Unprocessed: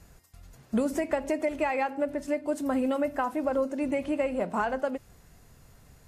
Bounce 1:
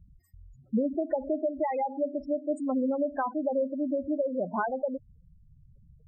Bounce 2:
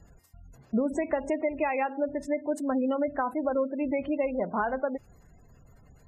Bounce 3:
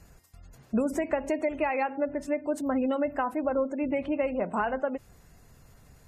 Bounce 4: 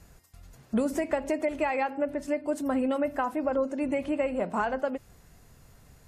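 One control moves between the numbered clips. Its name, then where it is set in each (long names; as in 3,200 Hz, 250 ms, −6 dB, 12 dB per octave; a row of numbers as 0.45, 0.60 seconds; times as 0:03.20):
gate on every frequency bin, under each frame's peak: −10, −25, −35, −50 decibels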